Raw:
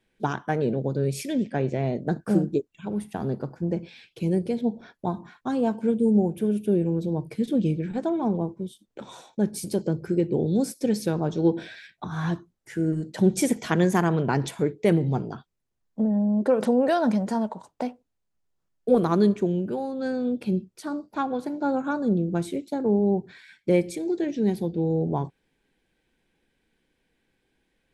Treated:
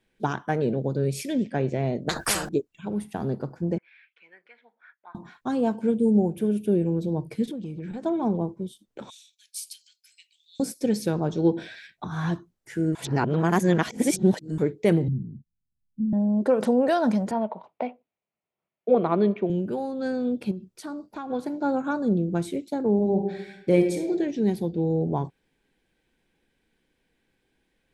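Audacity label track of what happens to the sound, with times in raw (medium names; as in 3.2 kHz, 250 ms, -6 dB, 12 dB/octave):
2.090000	2.490000	spectrum-flattening compressor 10:1
3.780000	5.150000	Butterworth band-pass 1.7 kHz, Q 1.8
7.460000	8.060000	compression 12:1, threshold -30 dBFS
9.100000	10.600000	steep high-pass 2.6 kHz
12.950000	14.580000	reverse
15.080000	16.130000	inverse Chebyshev low-pass stop band from 780 Hz, stop band 60 dB
17.310000	19.500000	cabinet simulation 190–3200 Hz, peaks and dips at 280 Hz -6 dB, 650 Hz +5 dB, 1.6 kHz -5 dB, 2.3 kHz +6 dB
20.510000	21.300000	compression, threshold -31 dBFS
22.940000	24.110000	reverb throw, RT60 0.86 s, DRR 3.5 dB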